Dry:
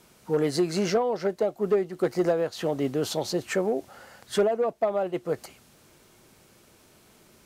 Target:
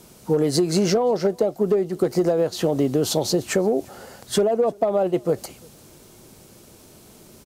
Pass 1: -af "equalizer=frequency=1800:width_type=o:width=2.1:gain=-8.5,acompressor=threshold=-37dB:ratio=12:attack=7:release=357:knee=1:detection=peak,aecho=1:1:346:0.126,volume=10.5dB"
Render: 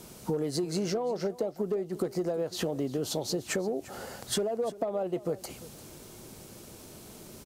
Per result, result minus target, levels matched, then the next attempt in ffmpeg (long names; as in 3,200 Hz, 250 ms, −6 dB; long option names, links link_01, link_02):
downward compressor: peak gain reduction +11 dB; echo-to-direct +10 dB
-af "equalizer=frequency=1800:width_type=o:width=2.1:gain=-8.5,acompressor=threshold=-25dB:ratio=12:attack=7:release=357:knee=1:detection=peak,aecho=1:1:346:0.126,volume=10.5dB"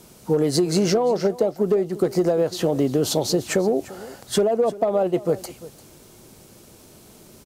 echo-to-direct +10 dB
-af "equalizer=frequency=1800:width_type=o:width=2.1:gain=-8.5,acompressor=threshold=-25dB:ratio=12:attack=7:release=357:knee=1:detection=peak,aecho=1:1:346:0.0398,volume=10.5dB"